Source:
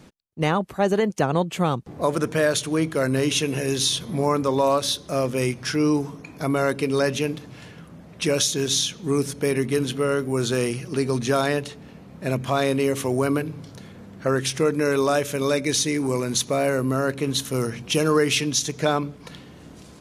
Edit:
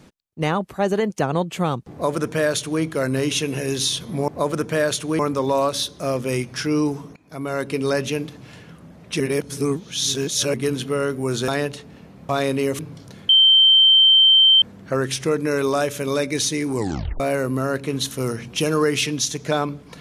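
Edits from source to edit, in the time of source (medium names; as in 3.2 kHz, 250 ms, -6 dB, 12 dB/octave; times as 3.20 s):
1.91–2.82 s: copy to 4.28 s
6.25–6.86 s: fade in, from -20.5 dB
8.29–9.63 s: reverse
10.57–11.40 s: delete
12.21–12.50 s: delete
13.00–13.46 s: delete
13.96 s: add tone 3.12 kHz -9.5 dBFS 1.33 s
16.10 s: tape stop 0.44 s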